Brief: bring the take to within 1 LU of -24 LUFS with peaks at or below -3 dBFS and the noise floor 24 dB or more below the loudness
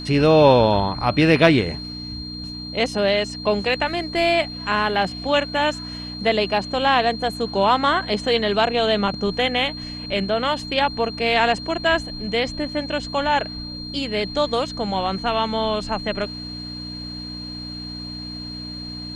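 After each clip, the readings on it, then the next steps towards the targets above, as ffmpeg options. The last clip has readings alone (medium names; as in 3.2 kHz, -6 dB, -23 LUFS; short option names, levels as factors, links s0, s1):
hum 60 Hz; highest harmonic 300 Hz; hum level -32 dBFS; steady tone 4.2 kHz; tone level -33 dBFS; loudness -21.5 LUFS; peak level -1.5 dBFS; loudness target -24.0 LUFS
-> -af "bandreject=f=60:t=h:w=4,bandreject=f=120:t=h:w=4,bandreject=f=180:t=h:w=4,bandreject=f=240:t=h:w=4,bandreject=f=300:t=h:w=4"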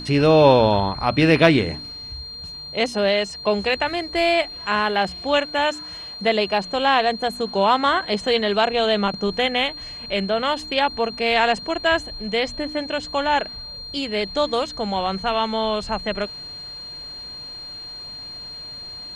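hum not found; steady tone 4.2 kHz; tone level -33 dBFS
-> -af "bandreject=f=4200:w=30"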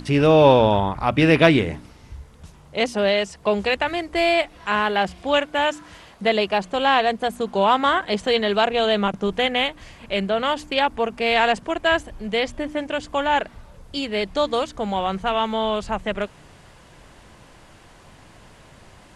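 steady tone not found; loudness -21.0 LUFS; peak level -1.5 dBFS; loudness target -24.0 LUFS
-> -af "volume=0.708"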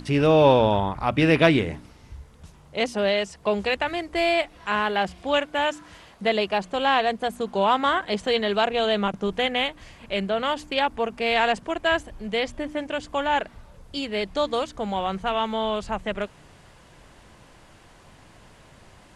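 loudness -24.0 LUFS; peak level -4.5 dBFS; noise floor -52 dBFS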